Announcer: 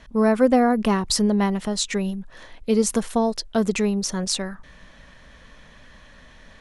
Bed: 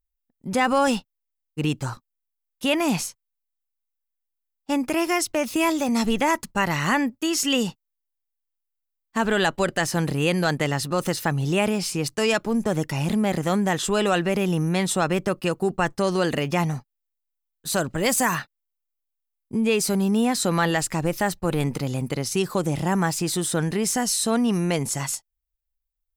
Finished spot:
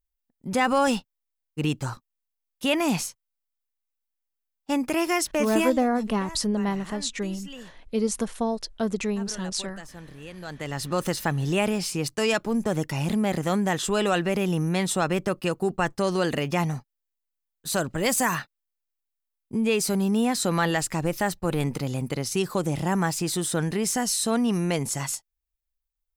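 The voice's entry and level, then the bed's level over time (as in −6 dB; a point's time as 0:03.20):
5.25 s, −5.5 dB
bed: 0:05.60 −1.5 dB
0:05.87 −20 dB
0:10.32 −20 dB
0:10.89 −2 dB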